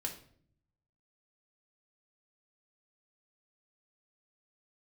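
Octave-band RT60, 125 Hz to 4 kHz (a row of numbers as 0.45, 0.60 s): 1.2, 0.90, 0.65, 0.50, 0.45, 0.45 s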